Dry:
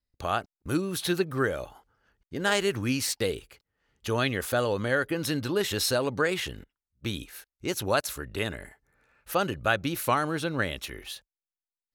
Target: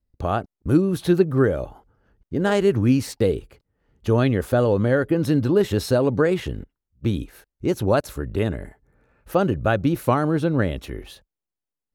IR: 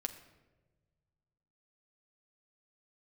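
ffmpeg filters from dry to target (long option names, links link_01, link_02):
-af "tiltshelf=frequency=970:gain=9,volume=3dB"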